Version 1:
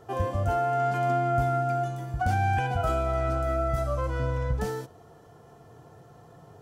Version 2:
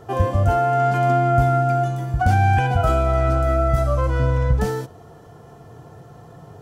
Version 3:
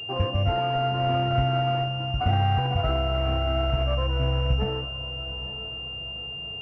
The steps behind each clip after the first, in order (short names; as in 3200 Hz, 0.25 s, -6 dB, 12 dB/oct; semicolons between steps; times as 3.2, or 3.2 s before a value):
tone controls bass +3 dB, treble -1 dB; gain +7 dB
decimation with a swept rate 8×, swing 100% 1.9 Hz; diffused feedback echo 0.901 s, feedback 41%, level -14 dB; pulse-width modulation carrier 2800 Hz; gain -6 dB